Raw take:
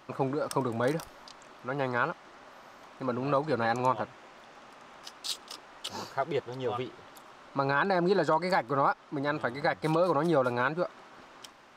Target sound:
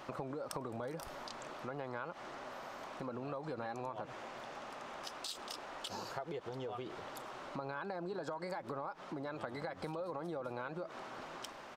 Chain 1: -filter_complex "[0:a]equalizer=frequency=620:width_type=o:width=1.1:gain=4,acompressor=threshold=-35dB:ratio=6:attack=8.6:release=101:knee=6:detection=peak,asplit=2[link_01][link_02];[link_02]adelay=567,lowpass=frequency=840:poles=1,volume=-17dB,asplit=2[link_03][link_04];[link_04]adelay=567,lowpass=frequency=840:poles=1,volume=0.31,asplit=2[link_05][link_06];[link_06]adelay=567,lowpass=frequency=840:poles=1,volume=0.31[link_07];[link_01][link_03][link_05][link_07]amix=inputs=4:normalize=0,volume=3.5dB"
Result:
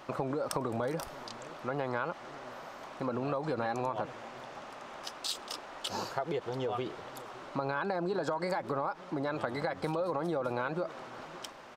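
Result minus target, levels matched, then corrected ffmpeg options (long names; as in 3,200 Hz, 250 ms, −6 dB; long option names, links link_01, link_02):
downward compressor: peak gain reduction −9 dB
-filter_complex "[0:a]equalizer=frequency=620:width_type=o:width=1.1:gain=4,acompressor=threshold=-45.5dB:ratio=6:attack=8.6:release=101:knee=6:detection=peak,asplit=2[link_01][link_02];[link_02]adelay=567,lowpass=frequency=840:poles=1,volume=-17dB,asplit=2[link_03][link_04];[link_04]adelay=567,lowpass=frequency=840:poles=1,volume=0.31,asplit=2[link_05][link_06];[link_06]adelay=567,lowpass=frequency=840:poles=1,volume=0.31[link_07];[link_01][link_03][link_05][link_07]amix=inputs=4:normalize=0,volume=3.5dB"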